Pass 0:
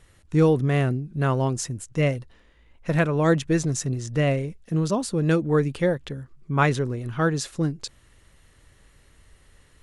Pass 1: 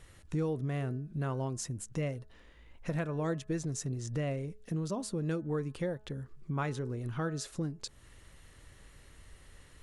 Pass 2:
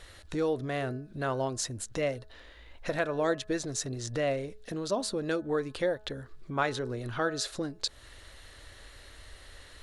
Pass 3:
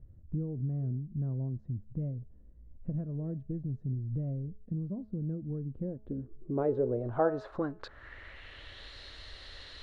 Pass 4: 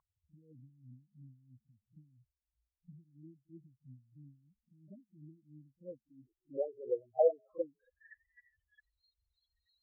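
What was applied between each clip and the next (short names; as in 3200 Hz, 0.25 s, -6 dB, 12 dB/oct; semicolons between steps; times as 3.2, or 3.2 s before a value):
compressor 2.5:1, threshold -37 dBFS, peak gain reduction 15 dB; dynamic EQ 2500 Hz, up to -3 dB, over -54 dBFS, Q 0.74; de-hum 213.4 Hz, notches 8
fifteen-band EQ 160 Hz -12 dB, 630 Hz +6 dB, 1600 Hz +5 dB, 4000 Hz +10 dB; gain +4 dB
low-pass sweep 170 Hz -> 4200 Hz, 5.68–8.95
loudest bins only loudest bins 4; pre-echo 40 ms -18 dB; wah 3 Hz 500–2100 Hz, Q 6.5; gain +7 dB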